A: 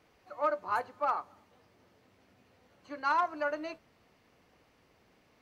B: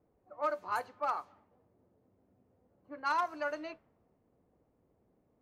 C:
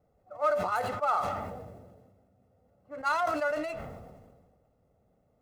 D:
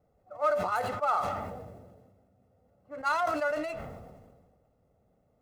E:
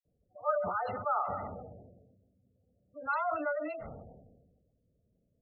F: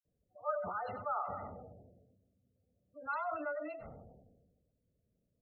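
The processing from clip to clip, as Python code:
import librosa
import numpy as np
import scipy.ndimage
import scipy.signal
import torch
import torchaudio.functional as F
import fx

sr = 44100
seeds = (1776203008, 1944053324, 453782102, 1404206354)

y1 = fx.env_lowpass(x, sr, base_hz=550.0, full_db=-28.0)
y1 = fx.high_shelf(y1, sr, hz=4900.0, db=10.5)
y1 = y1 * 10.0 ** (-3.5 / 20.0)
y2 = scipy.ndimage.median_filter(y1, 9, mode='constant')
y2 = y2 + 0.59 * np.pad(y2, (int(1.5 * sr / 1000.0), 0))[:len(y2)]
y2 = fx.sustainer(y2, sr, db_per_s=36.0)
y2 = y2 * 10.0 ** (2.5 / 20.0)
y3 = y2
y4 = fx.env_lowpass(y3, sr, base_hz=370.0, full_db=-28.5)
y4 = fx.spec_gate(y4, sr, threshold_db=-20, keep='strong')
y4 = fx.dispersion(y4, sr, late='lows', ms=53.0, hz=1300.0)
y4 = y4 * 10.0 ** (-3.5 / 20.0)
y5 = y4 + 10.0 ** (-17.5 / 20.0) * np.pad(y4, (int(96 * sr / 1000.0), 0))[:len(y4)]
y5 = y5 * 10.0 ** (-5.5 / 20.0)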